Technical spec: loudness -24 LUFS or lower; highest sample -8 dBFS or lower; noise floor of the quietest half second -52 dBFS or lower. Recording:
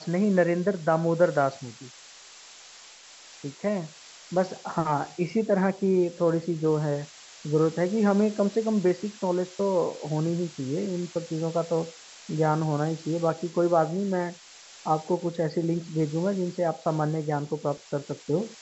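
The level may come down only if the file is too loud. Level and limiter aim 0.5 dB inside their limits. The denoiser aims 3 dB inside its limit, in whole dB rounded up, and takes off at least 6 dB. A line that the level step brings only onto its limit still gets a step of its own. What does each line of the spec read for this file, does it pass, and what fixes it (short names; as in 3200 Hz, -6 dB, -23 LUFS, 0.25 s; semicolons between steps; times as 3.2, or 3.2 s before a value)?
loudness -27.0 LUFS: OK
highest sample -9.0 dBFS: OK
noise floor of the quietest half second -49 dBFS: fail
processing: denoiser 6 dB, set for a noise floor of -49 dBFS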